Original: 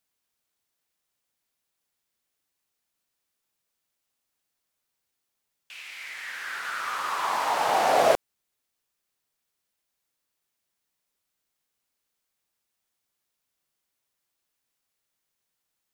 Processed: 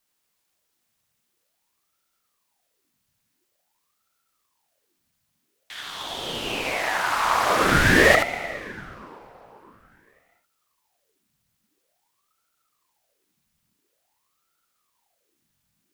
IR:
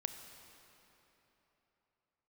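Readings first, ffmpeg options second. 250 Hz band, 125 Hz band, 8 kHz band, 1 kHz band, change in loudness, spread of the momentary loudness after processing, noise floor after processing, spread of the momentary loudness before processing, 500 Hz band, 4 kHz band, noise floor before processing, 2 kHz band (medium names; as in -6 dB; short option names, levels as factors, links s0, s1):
+15.5 dB, +22.0 dB, +6.5 dB, +1.5 dB, +5.0 dB, 20 LU, -75 dBFS, 17 LU, +2.5 dB, +8.0 dB, -81 dBFS, +11.5 dB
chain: -filter_complex "[0:a]asplit=2[s0][s1];[1:a]atrim=start_sample=2205,adelay=74[s2];[s1][s2]afir=irnorm=-1:irlink=0,volume=0.631[s3];[s0][s3]amix=inputs=2:normalize=0,asubboost=boost=11.5:cutoff=86,aeval=exprs='val(0)*sin(2*PI*740*n/s+740*0.85/0.48*sin(2*PI*0.48*n/s))':c=same,volume=2.51"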